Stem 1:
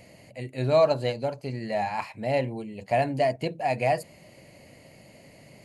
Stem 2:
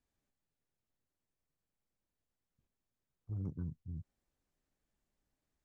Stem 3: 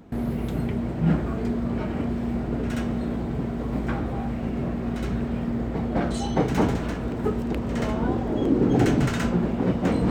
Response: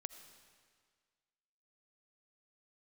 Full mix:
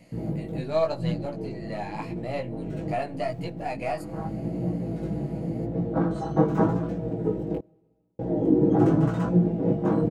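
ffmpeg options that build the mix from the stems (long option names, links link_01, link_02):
-filter_complex "[0:a]aeval=exprs='if(lt(val(0),0),0.708*val(0),val(0))':channel_layout=same,volume=-2.5dB,asplit=3[link_01][link_02][link_03];[link_02]volume=-13dB[link_04];[1:a]acrusher=bits=2:mode=log:mix=0:aa=0.000001,volume=-12dB[link_05];[2:a]afwtdn=0.0398,highpass=95,aecho=1:1:6.2:0.94,volume=0dB,asplit=3[link_06][link_07][link_08];[link_06]atrim=end=7.59,asetpts=PTS-STARTPTS,afade=type=out:start_time=7.586:duration=0.004:curve=hsin[link_09];[link_07]atrim=start=7.59:end=8.19,asetpts=PTS-STARTPTS,volume=0[link_10];[link_08]atrim=start=8.19,asetpts=PTS-STARTPTS,afade=type=in:duration=0.004:curve=hsin[link_11];[link_09][link_10][link_11]concat=n=3:v=0:a=1,asplit=2[link_12][link_13];[link_13]volume=-15dB[link_14];[link_03]apad=whole_len=445730[link_15];[link_12][link_15]sidechaincompress=threshold=-41dB:ratio=8:attack=34:release=234[link_16];[3:a]atrim=start_sample=2205[link_17];[link_04][link_14]amix=inputs=2:normalize=0[link_18];[link_18][link_17]afir=irnorm=-1:irlink=0[link_19];[link_01][link_05][link_16][link_19]amix=inputs=4:normalize=0,flanger=delay=17:depth=2.6:speed=0.86"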